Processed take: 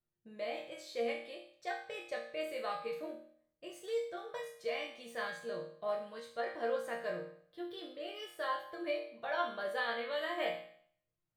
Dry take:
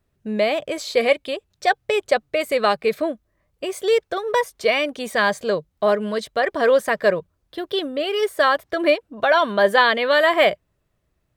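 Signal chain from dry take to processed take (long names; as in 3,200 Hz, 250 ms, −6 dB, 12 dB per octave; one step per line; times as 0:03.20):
resonators tuned to a chord A#2 sus4, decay 0.58 s
level −2 dB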